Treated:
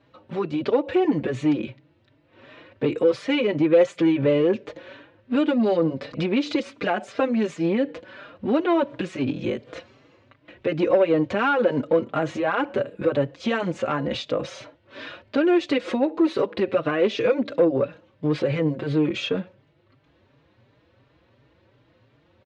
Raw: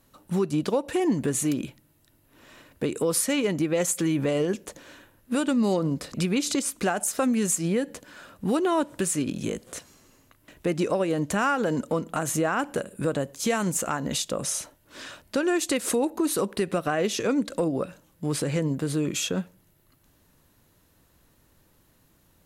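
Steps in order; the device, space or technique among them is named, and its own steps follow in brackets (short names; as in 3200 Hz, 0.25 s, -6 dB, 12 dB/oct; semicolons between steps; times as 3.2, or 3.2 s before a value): barber-pole flanger into a guitar amplifier (endless flanger 4.6 ms +2.8 Hz; soft clip -20 dBFS, distortion -19 dB; speaker cabinet 87–3800 Hz, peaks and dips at 120 Hz +7 dB, 180 Hz -7 dB, 330 Hz +3 dB, 530 Hz +7 dB, 2300 Hz +3 dB); gain +6 dB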